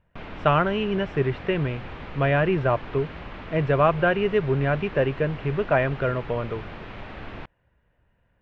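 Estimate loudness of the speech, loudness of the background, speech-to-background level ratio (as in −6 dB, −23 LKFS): −24.0 LKFS, −39.0 LKFS, 15.0 dB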